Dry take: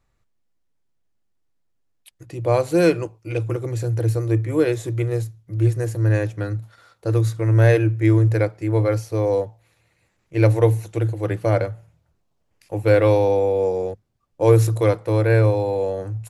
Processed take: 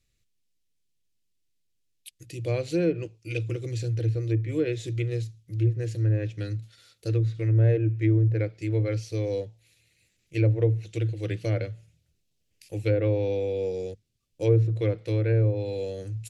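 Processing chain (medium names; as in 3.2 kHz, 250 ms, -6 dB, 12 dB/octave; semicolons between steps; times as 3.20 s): FFT filter 130 Hz 0 dB, 470 Hz -3 dB, 960 Hz -18 dB, 2.6 kHz +7 dB, 3.9 kHz +9 dB; low-pass that closes with the level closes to 1 kHz, closed at -13.5 dBFS; trim -5 dB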